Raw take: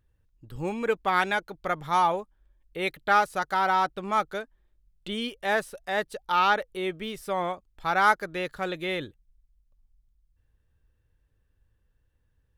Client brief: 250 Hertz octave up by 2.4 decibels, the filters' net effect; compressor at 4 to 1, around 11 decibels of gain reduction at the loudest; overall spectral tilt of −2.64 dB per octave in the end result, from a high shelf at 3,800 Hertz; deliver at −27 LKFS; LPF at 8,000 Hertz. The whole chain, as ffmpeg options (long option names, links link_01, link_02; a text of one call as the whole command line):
ffmpeg -i in.wav -af "lowpass=8000,equalizer=frequency=250:width_type=o:gain=3.5,highshelf=frequency=3800:gain=4,acompressor=threshold=-29dB:ratio=4,volume=6.5dB" out.wav